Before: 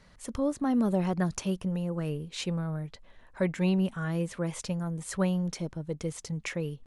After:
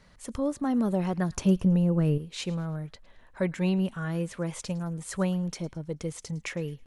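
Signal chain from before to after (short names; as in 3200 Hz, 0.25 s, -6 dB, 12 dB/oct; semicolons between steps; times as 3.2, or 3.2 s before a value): 1.37–2.18 low shelf 470 Hz +10 dB; thin delay 0.108 s, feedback 36%, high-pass 1400 Hz, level -20.5 dB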